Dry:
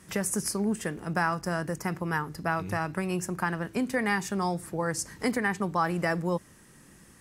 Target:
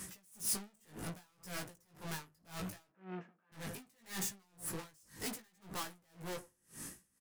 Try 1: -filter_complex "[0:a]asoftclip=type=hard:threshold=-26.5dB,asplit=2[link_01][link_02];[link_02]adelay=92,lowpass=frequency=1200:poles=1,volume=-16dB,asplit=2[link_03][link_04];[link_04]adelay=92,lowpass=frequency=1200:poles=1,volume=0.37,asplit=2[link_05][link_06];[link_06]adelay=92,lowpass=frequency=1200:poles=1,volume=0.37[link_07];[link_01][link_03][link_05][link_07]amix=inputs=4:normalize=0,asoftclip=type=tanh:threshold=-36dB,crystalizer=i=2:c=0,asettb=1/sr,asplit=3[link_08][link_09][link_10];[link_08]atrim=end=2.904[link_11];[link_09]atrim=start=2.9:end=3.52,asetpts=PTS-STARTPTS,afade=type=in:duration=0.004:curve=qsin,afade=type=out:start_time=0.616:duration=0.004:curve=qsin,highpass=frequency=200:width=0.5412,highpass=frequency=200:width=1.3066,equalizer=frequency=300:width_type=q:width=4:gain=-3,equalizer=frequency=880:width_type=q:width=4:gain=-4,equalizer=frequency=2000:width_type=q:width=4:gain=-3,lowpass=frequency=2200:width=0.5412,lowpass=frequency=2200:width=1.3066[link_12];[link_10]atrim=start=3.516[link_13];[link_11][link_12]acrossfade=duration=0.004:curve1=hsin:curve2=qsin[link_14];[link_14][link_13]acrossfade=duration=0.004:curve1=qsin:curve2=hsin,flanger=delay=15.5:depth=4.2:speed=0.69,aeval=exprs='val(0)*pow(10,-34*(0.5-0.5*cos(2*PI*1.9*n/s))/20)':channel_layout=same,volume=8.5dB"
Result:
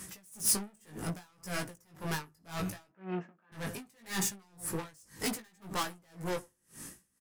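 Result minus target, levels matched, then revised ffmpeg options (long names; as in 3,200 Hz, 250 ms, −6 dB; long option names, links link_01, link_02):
soft clipping: distortion −5 dB
-filter_complex "[0:a]asoftclip=type=hard:threshold=-26.5dB,asplit=2[link_01][link_02];[link_02]adelay=92,lowpass=frequency=1200:poles=1,volume=-16dB,asplit=2[link_03][link_04];[link_04]adelay=92,lowpass=frequency=1200:poles=1,volume=0.37,asplit=2[link_05][link_06];[link_06]adelay=92,lowpass=frequency=1200:poles=1,volume=0.37[link_07];[link_01][link_03][link_05][link_07]amix=inputs=4:normalize=0,asoftclip=type=tanh:threshold=-45.5dB,crystalizer=i=2:c=0,asettb=1/sr,asplit=3[link_08][link_09][link_10];[link_08]atrim=end=2.904[link_11];[link_09]atrim=start=2.9:end=3.52,asetpts=PTS-STARTPTS,afade=type=in:duration=0.004:curve=qsin,afade=type=out:start_time=0.616:duration=0.004:curve=qsin,highpass=frequency=200:width=0.5412,highpass=frequency=200:width=1.3066,equalizer=frequency=300:width_type=q:width=4:gain=-3,equalizer=frequency=880:width_type=q:width=4:gain=-4,equalizer=frequency=2000:width_type=q:width=4:gain=-3,lowpass=frequency=2200:width=0.5412,lowpass=frequency=2200:width=1.3066[link_12];[link_10]atrim=start=3.516[link_13];[link_11][link_12]acrossfade=duration=0.004:curve1=hsin:curve2=qsin[link_14];[link_14][link_13]acrossfade=duration=0.004:curve1=qsin:curve2=hsin,flanger=delay=15.5:depth=4.2:speed=0.69,aeval=exprs='val(0)*pow(10,-34*(0.5-0.5*cos(2*PI*1.9*n/s))/20)':channel_layout=same,volume=8.5dB"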